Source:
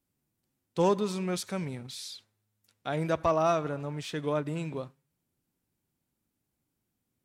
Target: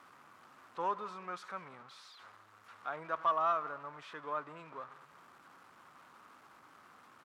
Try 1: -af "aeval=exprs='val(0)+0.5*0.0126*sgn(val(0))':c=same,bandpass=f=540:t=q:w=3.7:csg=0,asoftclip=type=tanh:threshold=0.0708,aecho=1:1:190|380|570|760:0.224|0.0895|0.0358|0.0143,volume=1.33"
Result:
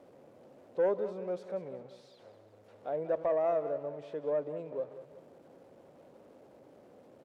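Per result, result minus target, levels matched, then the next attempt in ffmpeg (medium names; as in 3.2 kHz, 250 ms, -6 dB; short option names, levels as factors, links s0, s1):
1 kHz band -10.0 dB; echo-to-direct +11.5 dB
-af "aeval=exprs='val(0)+0.5*0.0126*sgn(val(0))':c=same,bandpass=f=1200:t=q:w=3.7:csg=0,asoftclip=type=tanh:threshold=0.0708,aecho=1:1:190|380|570|760:0.224|0.0895|0.0358|0.0143,volume=1.33"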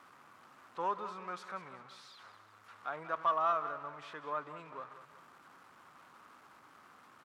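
echo-to-direct +11.5 dB
-af "aeval=exprs='val(0)+0.5*0.0126*sgn(val(0))':c=same,bandpass=f=1200:t=q:w=3.7:csg=0,asoftclip=type=tanh:threshold=0.0708,aecho=1:1:190|380:0.0596|0.0238,volume=1.33"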